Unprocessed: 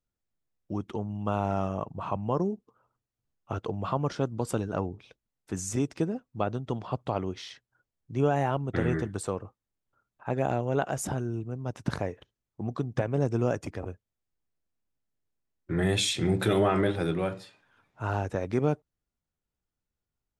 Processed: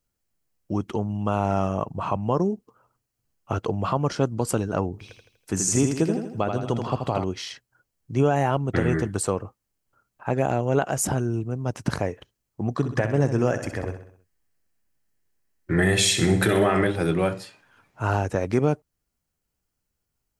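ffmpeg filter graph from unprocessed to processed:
ffmpeg -i in.wav -filter_complex "[0:a]asettb=1/sr,asplit=3[link_01][link_02][link_03];[link_01]atrim=end=4.934[link_04];[link_02]atrim=start=4.93:end=7.24,asetpts=PTS-STARTPTS,afade=type=in:duration=0.004:curve=qsin,afade=type=out:start_time=2.306:duration=0.004:curve=qsin,acrossover=split=8900[link_05][link_06];[link_06]acompressor=threshold=-58dB:ratio=4:attack=1:release=60[link_07];[link_05][link_07]amix=inputs=2:normalize=0,highshelf=frequency=5900:gain=4.5,aecho=1:1:81|162|243|324|405:0.501|0.226|0.101|0.0457|0.0206,atrim=end_sample=101871[link_08];[link_03]atrim=start=7.236[link_09];[link_04][link_08]acrossfade=duration=0.004:curve1=hsin:curve2=qsin[link_10];[link_10][link_09]acrossfade=duration=0.004:curve1=qsin:curve2=hsin,asettb=1/sr,asplit=3[link_11][link_12][link_13];[link_11]atrim=end=12.734[link_14];[link_12]atrim=start=12.73:end=16.87,asetpts=PTS-STARTPTS,afade=type=in:duration=0.004:curve=qsin,afade=type=out:start_time=4.136:duration=0.004:curve=qsin,equalizer=frequency=1800:width=3.8:gain=7,aecho=1:1:64|128|192|256|320:0.316|0.158|0.0791|0.0395|0.0198,atrim=end_sample=182574[link_15];[link_13]atrim=start=16.866[link_16];[link_14][link_15]acrossfade=duration=0.004:curve1=hsin:curve2=qsin[link_17];[link_17][link_16]acrossfade=duration=0.004:curve1=qsin:curve2=hsin,alimiter=limit=-16.5dB:level=0:latency=1:release=341,highshelf=frequency=4900:gain=6,bandreject=frequency=3600:width=10,volume=6.5dB" out.wav

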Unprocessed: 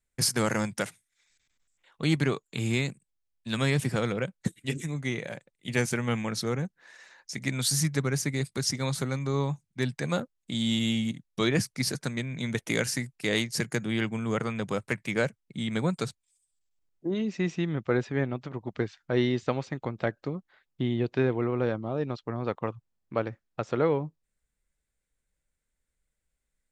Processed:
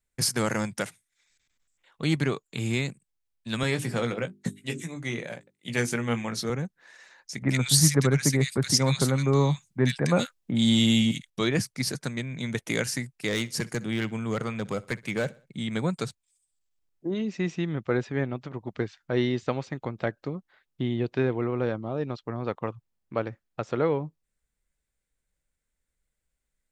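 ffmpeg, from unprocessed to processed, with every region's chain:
ffmpeg -i in.wav -filter_complex "[0:a]asettb=1/sr,asplit=3[link_01][link_02][link_03];[link_01]atrim=end=3.634[link_04];[link_02]atrim=start=3.63:end=6.5,asetpts=PTS-STARTPTS,afade=type=in:duration=0.004:curve=qsin,afade=type=out:start_time=2.866:duration=0.004:curve=qsin,highpass=120,bandreject=frequency=50:width_type=h:width=6,bandreject=frequency=100:width_type=h:width=6,bandreject=frequency=150:width_type=h:width=6,bandreject=frequency=200:width_type=h:width=6,bandreject=frequency=250:width_type=h:width=6,bandreject=frequency=300:width_type=h:width=6,bandreject=frequency=350:width_type=h:width=6,bandreject=frequency=400:width_type=h:width=6,asplit=2[link_05][link_06];[link_06]adelay=17,volume=-8.5dB[link_07];[link_05][link_07]amix=inputs=2:normalize=0,atrim=end_sample=126567[link_08];[link_03]atrim=start=6.496[link_09];[link_04][link_08]acrossfade=duration=0.004:curve1=hsin:curve2=qsin[link_10];[link_10][link_09]acrossfade=duration=0.004:curve1=qsin:curve2=hsin,asettb=1/sr,asplit=3[link_11][link_12][link_13];[link_11]atrim=end=7.424[link_14];[link_12]atrim=start=7.42:end=11.3,asetpts=PTS-STARTPTS,afade=type=in:duration=0.004:curve=qsin,afade=type=out:start_time=3.876:duration=0.004:curve=qsin,acontrast=59,acrossover=split=1700[link_15][link_16];[link_16]adelay=70[link_17];[link_15][link_17]amix=inputs=2:normalize=0,atrim=end_sample=171108[link_18];[link_13]atrim=start=11.296[link_19];[link_14][link_18]acrossfade=duration=0.004:curve1=hsin:curve2=qsin[link_20];[link_20][link_19]acrossfade=duration=0.004:curve1=qsin:curve2=hsin,asettb=1/sr,asplit=3[link_21][link_22][link_23];[link_21]atrim=end=13.284[link_24];[link_22]atrim=start=13.28:end=15.58,asetpts=PTS-STARTPTS,afade=type=in:duration=0.004:curve=qsin,afade=type=out:start_time=2.296:duration=0.004:curve=qsin,asoftclip=type=hard:threshold=-21dB,aecho=1:1:63|126|189:0.0794|0.0326|0.0134,atrim=end_sample=101430[link_25];[link_23]atrim=start=15.576[link_26];[link_24][link_25]acrossfade=duration=0.004:curve1=hsin:curve2=qsin[link_27];[link_27][link_26]acrossfade=duration=0.004:curve1=qsin:curve2=hsin" out.wav

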